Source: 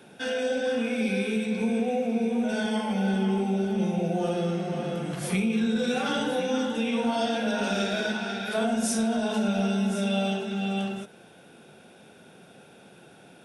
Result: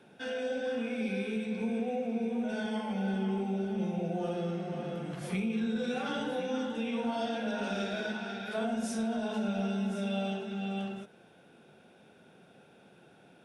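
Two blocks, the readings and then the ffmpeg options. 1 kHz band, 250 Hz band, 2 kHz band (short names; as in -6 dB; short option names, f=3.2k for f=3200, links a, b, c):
-6.5 dB, -6.5 dB, -7.5 dB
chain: -af "highshelf=f=5.8k:g=-10,volume=-6.5dB"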